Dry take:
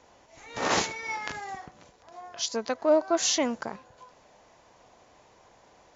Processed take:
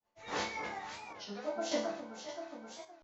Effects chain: gate -54 dBFS, range -60 dB; LPF 5800 Hz 12 dB/oct; in parallel at -2.5 dB: compressor 6:1, threshold -38 dBFS, peak gain reduction 19.5 dB; on the sum: flange 0.35 Hz, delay 6.9 ms, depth 9.2 ms, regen +85%; plain phase-vocoder stretch 0.51×; resonator bank D2 sus4, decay 0.52 s; on a send: echo with dull and thin repeats by turns 0.264 s, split 1100 Hz, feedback 71%, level -6 dB; on the sum: random-step tremolo 3.5 Hz; record warp 33 1/3 rpm, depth 160 cents; gain +14 dB

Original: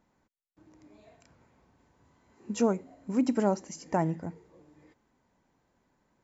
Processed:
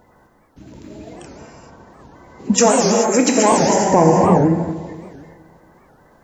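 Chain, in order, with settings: bin magnitudes rounded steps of 30 dB; dynamic EQ 3600 Hz, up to -6 dB, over -51 dBFS, Q 0.73; in parallel at -6 dB: soft clip -22.5 dBFS, distortion -13 dB; 2.58–3.53 on the sum: tilt +4.5 dB/oct; on a send: darkening echo 0.236 s, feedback 47%, level -15 dB; on the sum: non-linear reverb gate 0.46 s flat, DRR -0.5 dB; maximiser +16 dB; record warp 78 rpm, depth 250 cents; gain -1 dB

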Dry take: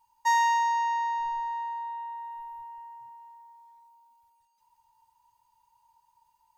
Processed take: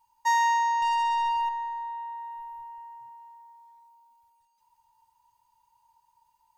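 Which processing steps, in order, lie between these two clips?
0.82–1.49 sample leveller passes 2; on a send: reverb RT60 0.80 s, pre-delay 0.124 s, DRR 23.5 dB

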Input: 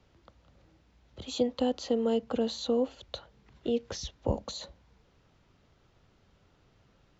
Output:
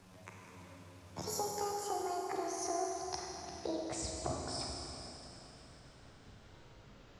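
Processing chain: gliding pitch shift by +11 st ending unshifted; compressor 4:1, threshold -45 dBFS, peak gain reduction 18.5 dB; Schroeder reverb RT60 3.2 s, combs from 33 ms, DRR -1 dB; gain +5.5 dB

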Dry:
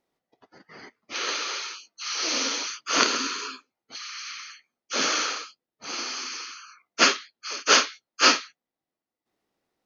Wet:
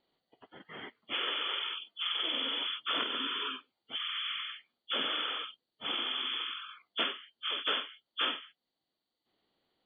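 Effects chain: nonlinear frequency compression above 2800 Hz 4:1; compressor 6:1, threshold -31 dBFS, peak gain reduction 18 dB

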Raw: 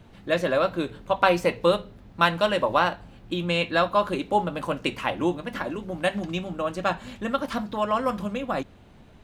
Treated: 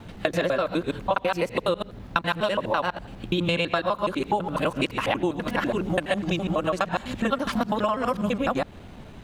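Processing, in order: local time reversal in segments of 83 ms; compressor 12:1, threshold -29 dBFS, peak gain reduction 15.5 dB; gain +8.5 dB

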